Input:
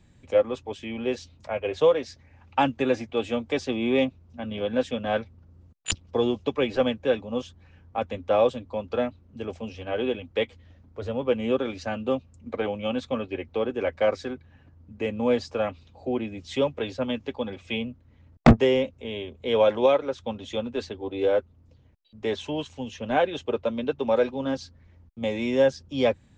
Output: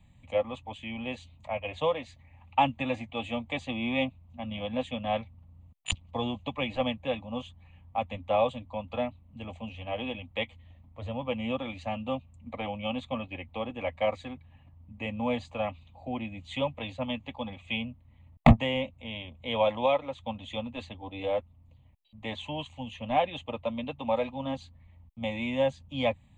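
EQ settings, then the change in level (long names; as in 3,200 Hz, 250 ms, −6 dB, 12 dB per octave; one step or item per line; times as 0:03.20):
phaser with its sweep stopped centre 1,500 Hz, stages 6
0.0 dB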